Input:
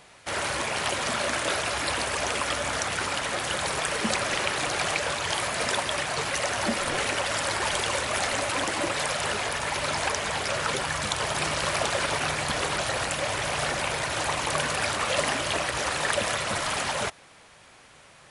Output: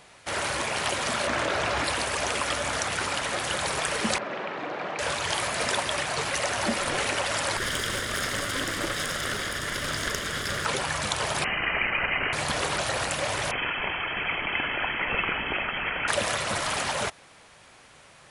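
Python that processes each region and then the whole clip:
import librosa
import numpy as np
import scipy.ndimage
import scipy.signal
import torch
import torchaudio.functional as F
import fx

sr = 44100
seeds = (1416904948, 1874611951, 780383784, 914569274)

y = fx.chain(x, sr, fx.lowpass(hz=8100.0, slope=12),
    fx.high_shelf(hz=2900.0, db=-8.5),
    fx.env_flatten(amount_pct=100), at=(1.27, 1.84))
y = fx.chain(y, sr, fx.highpass(hz=170.0, slope=24),
    fx.spacing_loss(db_at_10k=43),
    fx.room_flutter(wall_m=7.3, rt60_s=0.32), at=(4.18, 4.99))
y = fx.chain(y, sr, fx.lower_of_two(delay_ms=0.6),
    fx.doubler(ms=37.0, db=-13),
    fx.doppler_dist(depth_ms=0.13), at=(7.57, 10.65))
y = fx.chain(y, sr, fx.peak_eq(hz=960.0, db=5.5, octaves=0.25),
    fx.freq_invert(carrier_hz=3000), at=(11.44, 12.33))
y = fx.chain(y, sr, fx.peak_eq(hz=360.0, db=-12.5, octaves=0.54),
    fx.freq_invert(carrier_hz=3200), at=(13.51, 16.08))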